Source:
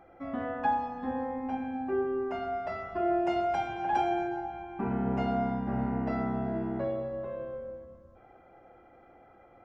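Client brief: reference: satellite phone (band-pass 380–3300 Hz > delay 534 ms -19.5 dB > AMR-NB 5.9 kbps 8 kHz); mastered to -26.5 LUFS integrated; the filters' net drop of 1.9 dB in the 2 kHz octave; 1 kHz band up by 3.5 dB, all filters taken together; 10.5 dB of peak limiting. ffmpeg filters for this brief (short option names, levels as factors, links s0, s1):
-af "equalizer=f=1000:t=o:g=6.5,equalizer=f=2000:t=o:g=-5,alimiter=limit=0.0668:level=0:latency=1,highpass=380,lowpass=3300,aecho=1:1:534:0.106,volume=2.82" -ar 8000 -c:a libopencore_amrnb -b:a 5900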